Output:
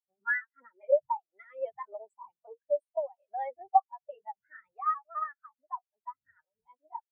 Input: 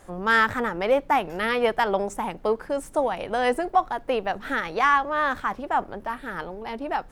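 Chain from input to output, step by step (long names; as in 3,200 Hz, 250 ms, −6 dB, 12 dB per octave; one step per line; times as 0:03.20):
pitch shifter swept by a sawtooth +2 semitones, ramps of 206 ms
wind on the microphone 120 Hz −36 dBFS
spectral tilt +3.5 dB per octave
notch filter 470 Hz, Q 14
downward compressor 16 to 1, threshold −24 dBFS, peak gain reduction 12.5 dB
every bin expanded away from the loudest bin 4 to 1
level +3 dB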